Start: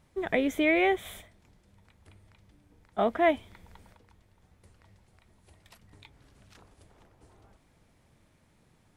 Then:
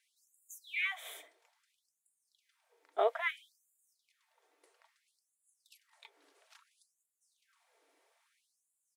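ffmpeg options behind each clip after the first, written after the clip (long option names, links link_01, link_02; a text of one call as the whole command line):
ffmpeg -i in.wav -af "aecho=1:1:4.4:0.31,afftfilt=real='re*gte(b*sr/1024,280*pow(6900/280,0.5+0.5*sin(2*PI*0.6*pts/sr)))':imag='im*gte(b*sr/1024,280*pow(6900/280,0.5+0.5*sin(2*PI*0.6*pts/sr)))':win_size=1024:overlap=0.75,volume=-3.5dB" out.wav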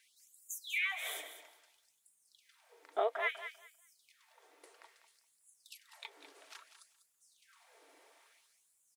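ffmpeg -i in.wav -filter_complex "[0:a]acompressor=threshold=-47dB:ratio=2,asplit=2[link_01][link_02];[link_02]aecho=0:1:197|394|591:0.282|0.0535|0.0102[link_03];[link_01][link_03]amix=inputs=2:normalize=0,volume=8.5dB" out.wav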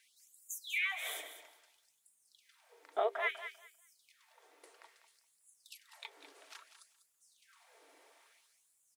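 ffmpeg -i in.wav -af "bandreject=frequency=50:width_type=h:width=6,bandreject=frequency=100:width_type=h:width=6,bandreject=frequency=150:width_type=h:width=6,bandreject=frequency=200:width_type=h:width=6,bandreject=frequency=250:width_type=h:width=6,bandreject=frequency=300:width_type=h:width=6,bandreject=frequency=350:width_type=h:width=6,bandreject=frequency=400:width_type=h:width=6" out.wav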